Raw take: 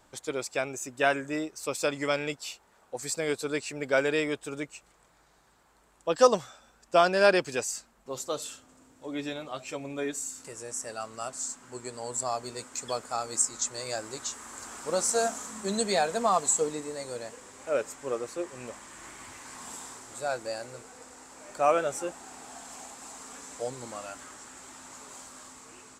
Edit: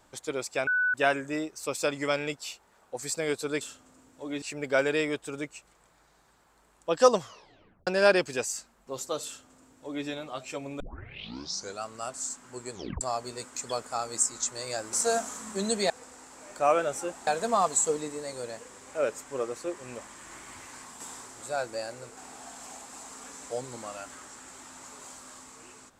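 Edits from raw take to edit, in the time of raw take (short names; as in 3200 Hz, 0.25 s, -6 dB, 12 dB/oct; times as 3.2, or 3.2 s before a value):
0.67–0.94 bleep 1490 Hz -22.5 dBFS
6.4 tape stop 0.66 s
8.44–9.25 copy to 3.61
9.99 tape start 1.03 s
11.91 tape stop 0.29 s
14.12–15.02 cut
19.46–19.72 fade out, to -6 dB
20.89–22.26 move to 15.99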